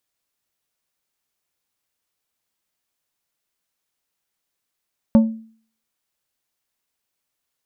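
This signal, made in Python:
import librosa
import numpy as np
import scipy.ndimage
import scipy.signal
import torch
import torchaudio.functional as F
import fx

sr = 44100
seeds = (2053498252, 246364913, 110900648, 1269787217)

y = fx.strike_glass(sr, length_s=0.89, level_db=-6.0, body='plate', hz=223.0, decay_s=0.48, tilt_db=10.0, modes=5)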